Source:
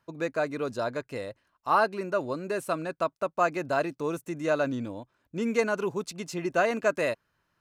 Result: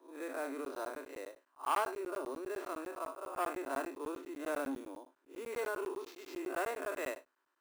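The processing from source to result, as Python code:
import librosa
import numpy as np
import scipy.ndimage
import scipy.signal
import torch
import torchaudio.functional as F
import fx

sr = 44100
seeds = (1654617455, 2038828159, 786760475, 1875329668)

y = fx.spec_blur(x, sr, span_ms=117.0)
y = fx.sample_hold(y, sr, seeds[0], rate_hz=10000.0, jitter_pct=0)
y = scipy.signal.sosfilt(scipy.signal.cheby1(6, 6, 260.0, 'highpass', fs=sr, output='sos'), y)
y = fx.buffer_crackle(y, sr, first_s=0.65, period_s=0.1, block=512, kind='zero')
y = fx.transformer_sat(y, sr, knee_hz=1200.0)
y = F.gain(torch.from_numpy(y), -1.5).numpy()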